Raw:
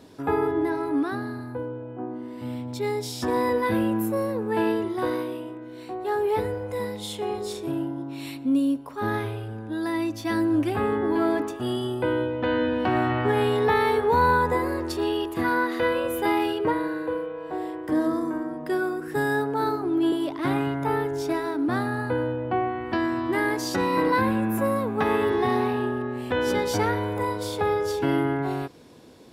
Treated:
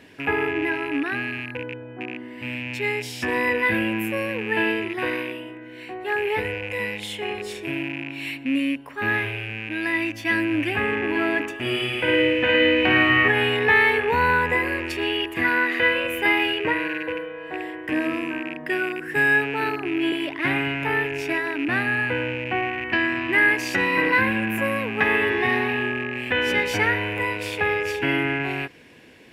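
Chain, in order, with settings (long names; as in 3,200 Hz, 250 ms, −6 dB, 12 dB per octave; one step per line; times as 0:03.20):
loose part that buzzes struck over −36 dBFS, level −32 dBFS
flat-topped bell 2,200 Hz +14.5 dB 1.1 octaves
0:11.54–0:13.28: flutter between parallel walls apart 9.4 metres, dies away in 1.2 s
level −1.5 dB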